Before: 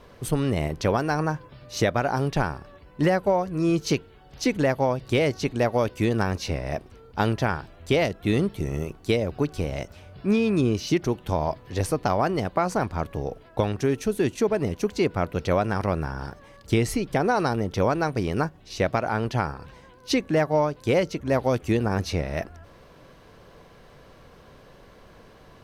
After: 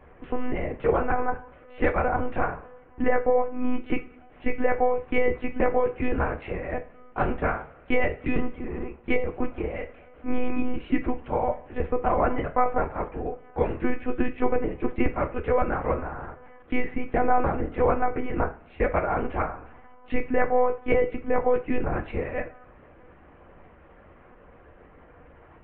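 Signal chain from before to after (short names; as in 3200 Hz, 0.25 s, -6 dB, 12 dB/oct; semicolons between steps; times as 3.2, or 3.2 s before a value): mistuned SSB -51 Hz 220–2500 Hz; monotone LPC vocoder at 8 kHz 250 Hz; two-slope reverb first 0.33 s, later 1.5 s, from -22 dB, DRR 6 dB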